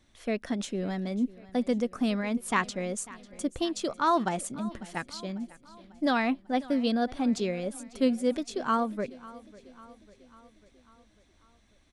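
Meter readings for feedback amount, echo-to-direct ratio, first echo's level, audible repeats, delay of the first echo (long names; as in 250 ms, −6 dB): 57%, −18.5 dB, −20.0 dB, 4, 546 ms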